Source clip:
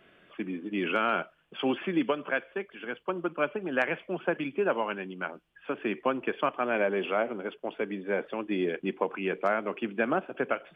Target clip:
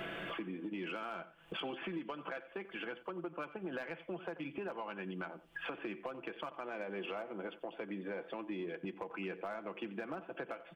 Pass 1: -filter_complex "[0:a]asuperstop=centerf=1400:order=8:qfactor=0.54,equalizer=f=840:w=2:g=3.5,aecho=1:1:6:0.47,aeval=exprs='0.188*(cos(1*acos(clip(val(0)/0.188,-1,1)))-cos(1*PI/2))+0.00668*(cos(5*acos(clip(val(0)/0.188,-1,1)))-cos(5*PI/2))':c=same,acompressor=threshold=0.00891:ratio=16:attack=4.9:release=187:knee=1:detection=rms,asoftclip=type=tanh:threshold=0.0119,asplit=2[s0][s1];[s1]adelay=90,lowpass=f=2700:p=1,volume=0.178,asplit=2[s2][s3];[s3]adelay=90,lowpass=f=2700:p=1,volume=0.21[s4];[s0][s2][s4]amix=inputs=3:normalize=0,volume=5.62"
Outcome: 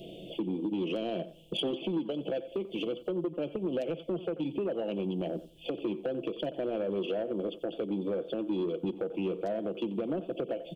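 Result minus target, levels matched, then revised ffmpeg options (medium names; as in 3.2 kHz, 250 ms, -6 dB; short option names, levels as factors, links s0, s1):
compression: peak gain reduction -11.5 dB; 1 kHz band -9.0 dB
-filter_complex "[0:a]equalizer=f=840:w=2:g=3.5,aecho=1:1:6:0.47,aeval=exprs='0.188*(cos(1*acos(clip(val(0)/0.188,-1,1)))-cos(1*PI/2))+0.00668*(cos(5*acos(clip(val(0)/0.188,-1,1)))-cos(5*PI/2))':c=same,acompressor=threshold=0.00237:ratio=16:attack=4.9:release=187:knee=1:detection=rms,asoftclip=type=tanh:threshold=0.0119,asplit=2[s0][s1];[s1]adelay=90,lowpass=f=2700:p=1,volume=0.178,asplit=2[s2][s3];[s3]adelay=90,lowpass=f=2700:p=1,volume=0.21[s4];[s0][s2][s4]amix=inputs=3:normalize=0,volume=5.62"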